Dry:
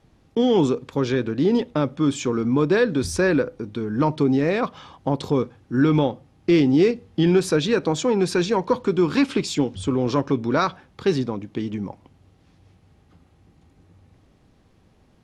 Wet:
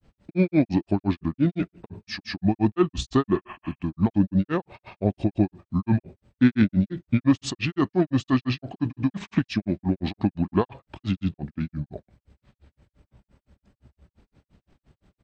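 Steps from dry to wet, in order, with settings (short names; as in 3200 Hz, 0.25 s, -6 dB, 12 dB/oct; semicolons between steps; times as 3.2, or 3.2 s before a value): spectral repair 3.43–3.71, 770–4600 Hz both; pitch shift -5.5 st; grains 0.138 s, grains 5.8/s, pitch spread up and down by 0 st; gain +1.5 dB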